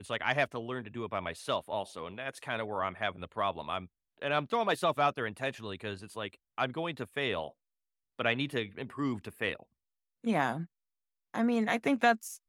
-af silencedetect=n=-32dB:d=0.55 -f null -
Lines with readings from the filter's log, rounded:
silence_start: 7.48
silence_end: 8.20 | silence_duration: 0.72
silence_start: 9.53
silence_end: 10.26 | silence_duration: 0.73
silence_start: 10.62
silence_end: 11.34 | silence_duration: 0.72